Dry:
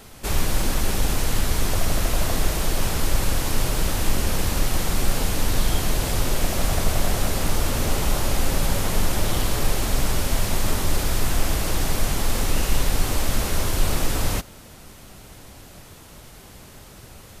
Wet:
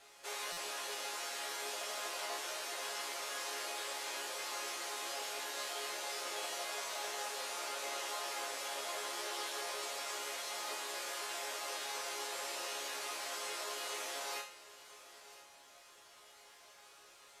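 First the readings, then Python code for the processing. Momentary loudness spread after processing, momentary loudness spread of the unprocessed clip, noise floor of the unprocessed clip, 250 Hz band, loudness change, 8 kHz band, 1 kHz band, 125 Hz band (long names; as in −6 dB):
17 LU, 20 LU, −45 dBFS, −29.5 dB, −15.0 dB, −13.0 dB, −11.0 dB, below −40 dB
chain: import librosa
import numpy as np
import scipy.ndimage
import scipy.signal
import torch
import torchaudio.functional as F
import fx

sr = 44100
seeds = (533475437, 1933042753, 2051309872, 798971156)

p1 = scipy.signal.sosfilt(scipy.signal.bessel(6, 630.0, 'highpass', norm='mag', fs=sr, output='sos'), x)
p2 = fx.peak_eq(p1, sr, hz=13000.0, db=2.5, octaves=2.1)
p3 = fx.resonator_bank(p2, sr, root=49, chord='major', decay_s=0.38)
p4 = fx.quant_dither(p3, sr, seeds[0], bits=12, dither='triangular')
p5 = fx.air_absorb(p4, sr, metres=51.0)
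p6 = p5 + fx.echo_single(p5, sr, ms=1003, db=-16.5, dry=0)
p7 = fx.buffer_glitch(p6, sr, at_s=(0.52,), block=256, repeats=8)
y = p7 * librosa.db_to_amplitude(5.5)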